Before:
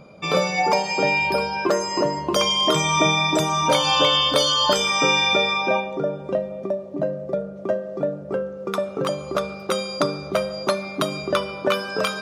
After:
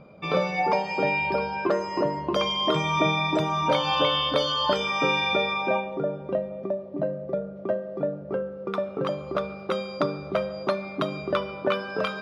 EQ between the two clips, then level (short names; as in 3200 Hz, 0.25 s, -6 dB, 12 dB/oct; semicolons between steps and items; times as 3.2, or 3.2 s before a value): air absorption 340 m; high shelf 5700 Hz +11 dB; -2.5 dB